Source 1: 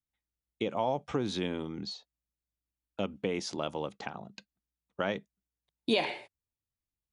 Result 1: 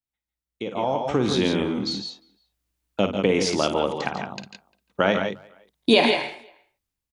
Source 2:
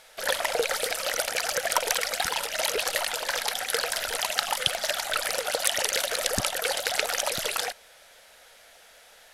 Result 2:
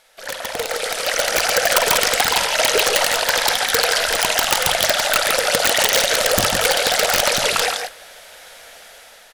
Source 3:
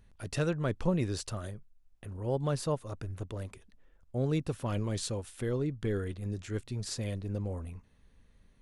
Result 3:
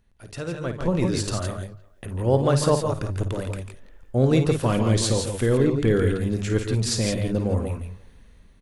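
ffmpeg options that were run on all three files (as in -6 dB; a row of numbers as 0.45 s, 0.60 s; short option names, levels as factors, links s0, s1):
-filter_complex "[0:a]asplit=2[s0][s1];[s1]aecho=0:1:53|145|166:0.316|0.316|0.422[s2];[s0][s2]amix=inputs=2:normalize=0,acrossover=split=9300[s3][s4];[s4]acompressor=threshold=0.00631:ratio=4:attack=1:release=60[s5];[s3][s5]amix=inputs=2:normalize=0,aeval=exprs='(mod(5.62*val(0)+1,2)-1)/5.62':c=same,asplit=2[s6][s7];[s7]adelay=350,highpass=300,lowpass=3400,asoftclip=type=hard:threshold=0.0631,volume=0.0447[s8];[s6][s8]amix=inputs=2:normalize=0,dynaudnorm=f=220:g=9:m=5.62,bandreject=f=50:t=h:w=6,bandreject=f=100:t=h:w=6,bandreject=f=150:t=h:w=6,volume=0.75"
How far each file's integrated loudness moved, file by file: +11.0 LU, +10.0 LU, +11.0 LU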